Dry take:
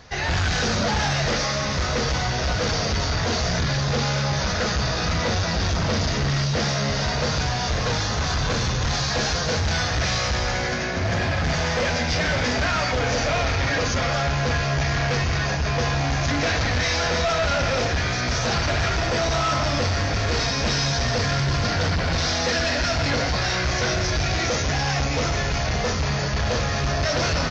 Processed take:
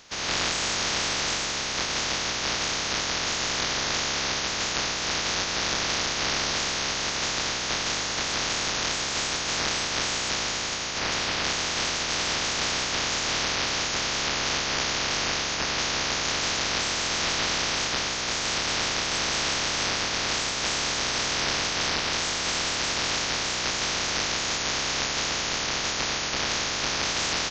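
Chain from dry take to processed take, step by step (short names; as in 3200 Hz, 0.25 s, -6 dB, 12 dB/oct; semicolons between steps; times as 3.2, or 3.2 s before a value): spectral limiter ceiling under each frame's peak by 30 dB; gain -4.5 dB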